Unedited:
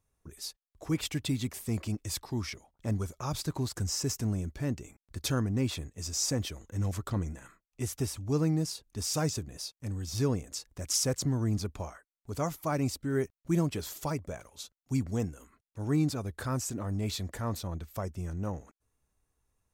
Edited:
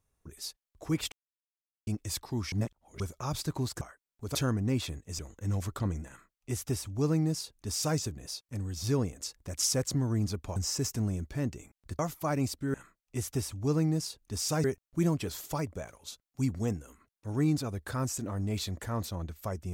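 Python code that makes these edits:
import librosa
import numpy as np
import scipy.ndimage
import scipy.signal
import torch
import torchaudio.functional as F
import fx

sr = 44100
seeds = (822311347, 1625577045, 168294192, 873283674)

y = fx.edit(x, sr, fx.silence(start_s=1.12, length_s=0.75),
    fx.reverse_span(start_s=2.52, length_s=0.48),
    fx.swap(start_s=3.81, length_s=1.43, other_s=11.87, other_length_s=0.54),
    fx.cut(start_s=6.08, length_s=0.42),
    fx.duplicate(start_s=7.39, length_s=1.9, to_s=13.16), tone=tone)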